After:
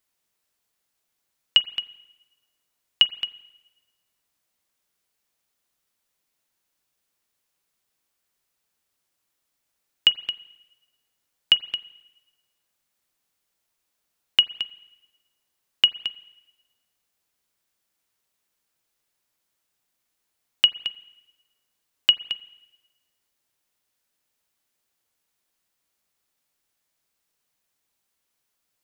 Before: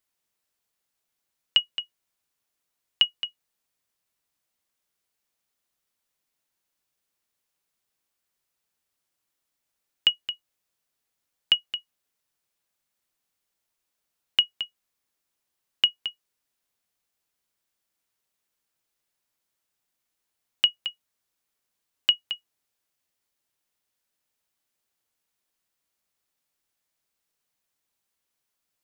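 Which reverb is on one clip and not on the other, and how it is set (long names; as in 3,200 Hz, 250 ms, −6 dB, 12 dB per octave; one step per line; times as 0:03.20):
spring reverb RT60 1.1 s, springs 39/44 ms, chirp 50 ms, DRR 17.5 dB
level +3.5 dB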